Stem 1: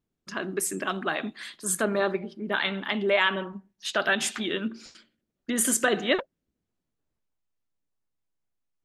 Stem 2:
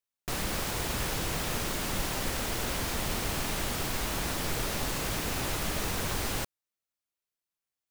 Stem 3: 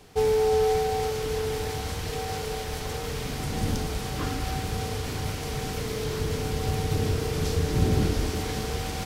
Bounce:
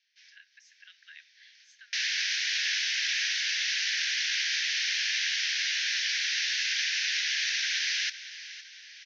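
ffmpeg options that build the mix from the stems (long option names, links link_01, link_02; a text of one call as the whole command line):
ffmpeg -i stem1.wav -i stem2.wav -i stem3.wav -filter_complex "[0:a]volume=-16dB,asplit=2[link_01][link_02];[1:a]acontrast=65,adelay=1650,volume=3dB,asplit=2[link_03][link_04];[link_04]volume=-15dB[link_05];[2:a]volume=-16dB,asplit=2[link_06][link_07];[link_07]volume=-8.5dB[link_08];[link_02]apad=whole_len=399310[link_09];[link_06][link_09]sidechaincompress=threshold=-55dB:ratio=10:attack=10:release=390[link_10];[link_05][link_08]amix=inputs=2:normalize=0,aecho=0:1:511|1022|1533|2044|2555|3066|3577:1|0.47|0.221|0.104|0.0488|0.0229|0.0108[link_11];[link_01][link_03][link_10][link_11]amix=inputs=4:normalize=0,asuperpass=centerf=3200:order=20:qfactor=0.7" out.wav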